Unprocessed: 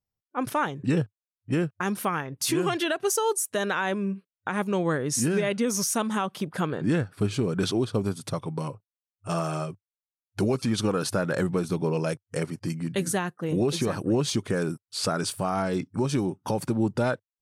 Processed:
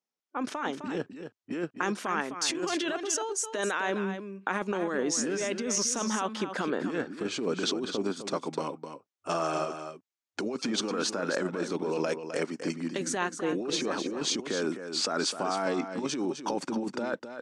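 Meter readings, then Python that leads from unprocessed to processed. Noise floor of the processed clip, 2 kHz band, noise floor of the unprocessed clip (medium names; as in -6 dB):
under -85 dBFS, -1.5 dB, under -85 dBFS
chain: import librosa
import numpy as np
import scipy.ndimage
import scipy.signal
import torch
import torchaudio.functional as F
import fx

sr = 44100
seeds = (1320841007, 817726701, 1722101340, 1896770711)

y = scipy.signal.sosfilt(scipy.signal.cheby1(3, 1.0, [250.0, 7000.0], 'bandpass', fs=sr, output='sos'), x)
y = fx.over_compress(y, sr, threshold_db=-30.0, ratio=-1.0)
y = y + 10.0 ** (-9.0 / 20.0) * np.pad(y, (int(258 * sr / 1000.0), 0))[:len(y)]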